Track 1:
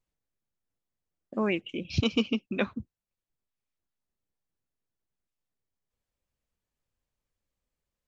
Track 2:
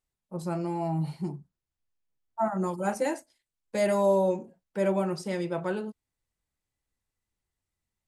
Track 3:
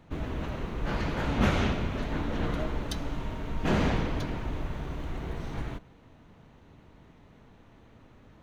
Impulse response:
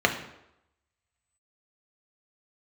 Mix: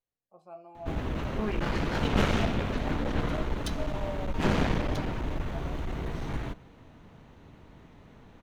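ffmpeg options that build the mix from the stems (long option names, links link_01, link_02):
-filter_complex "[0:a]volume=-14.5dB,asplit=2[link_01][link_02];[link_02]volume=-8dB[link_03];[1:a]acontrast=86,asplit=3[link_04][link_05][link_06];[link_04]bandpass=frequency=730:width_type=q:width=8,volume=0dB[link_07];[link_05]bandpass=frequency=1090:width_type=q:width=8,volume=-6dB[link_08];[link_06]bandpass=frequency=2440:width_type=q:width=8,volume=-9dB[link_09];[link_07][link_08][link_09]amix=inputs=3:normalize=0,volume=-11dB[link_10];[2:a]adelay=750,volume=2.5dB[link_11];[3:a]atrim=start_sample=2205[link_12];[link_03][link_12]afir=irnorm=-1:irlink=0[link_13];[link_01][link_10][link_11][link_13]amix=inputs=4:normalize=0,aeval=exprs='clip(val(0),-1,0.0335)':channel_layout=same"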